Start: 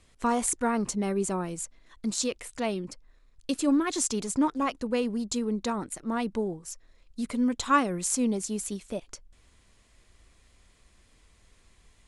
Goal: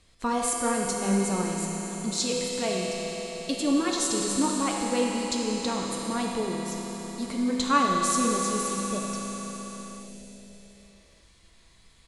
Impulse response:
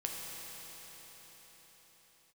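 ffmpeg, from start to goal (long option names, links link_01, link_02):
-filter_complex "[0:a]equalizer=frequency=4200:width_type=o:width=0.62:gain=6.5,asplit=2[link_01][link_02];[link_02]adelay=90,highpass=300,lowpass=3400,asoftclip=type=hard:threshold=-17dB,volume=-11dB[link_03];[link_01][link_03]amix=inputs=2:normalize=0[link_04];[1:a]atrim=start_sample=2205[link_05];[link_04][link_05]afir=irnorm=-1:irlink=0"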